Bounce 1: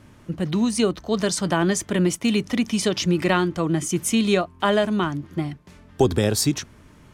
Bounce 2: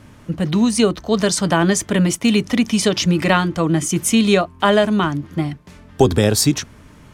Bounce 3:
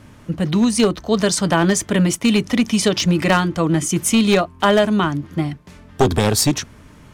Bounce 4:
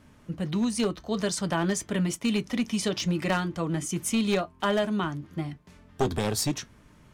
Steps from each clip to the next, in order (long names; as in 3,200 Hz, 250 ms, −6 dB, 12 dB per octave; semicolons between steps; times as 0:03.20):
notch filter 360 Hz, Q 12; level +5.5 dB
wavefolder on the positive side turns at −10 dBFS
flanger 0.52 Hz, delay 4.5 ms, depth 1.3 ms, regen −76%; level −6.5 dB